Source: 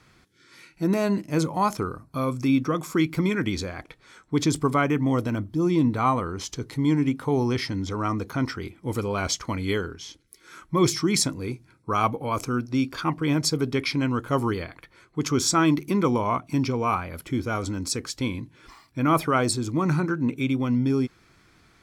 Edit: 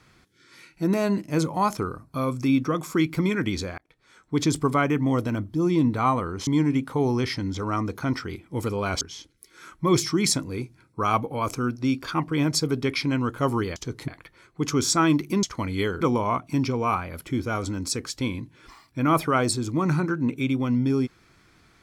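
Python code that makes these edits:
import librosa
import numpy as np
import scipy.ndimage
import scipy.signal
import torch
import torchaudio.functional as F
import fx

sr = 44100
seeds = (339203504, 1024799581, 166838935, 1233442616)

y = fx.edit(x, sr, fx.fade_in_span(start_s=3.78, length_s=0.63),
    fx.move(start_s=6.47, length_s=0.32, to_s=14.66),
    fx.move(start_s=9.33, length_s=0.58, to_s=16.01), tone=tone)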